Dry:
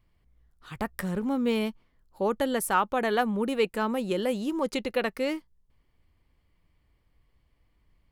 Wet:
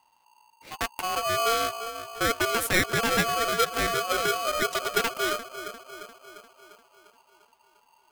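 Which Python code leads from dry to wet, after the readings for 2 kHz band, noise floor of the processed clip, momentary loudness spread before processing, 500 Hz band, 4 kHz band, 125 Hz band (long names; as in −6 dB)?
+7.5 dB, −65 dBFS, 8 LU, −0.5 dB, +9.5 dB, +1.5 dB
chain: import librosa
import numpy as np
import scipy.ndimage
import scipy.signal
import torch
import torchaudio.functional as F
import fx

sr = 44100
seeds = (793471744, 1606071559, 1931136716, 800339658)

p1 = x + fx.echo_bbd(x, sr, ms=348, stages=2048, feedback_pct=57, wet_db=-11.0, dry=0)
p2 = p1 * np.sign(np.sin(2.0 * np.pi * 920.0 * np.arange(len(p1)) / sr))
y = p2 * librosa.db_to_amplitude(1.0)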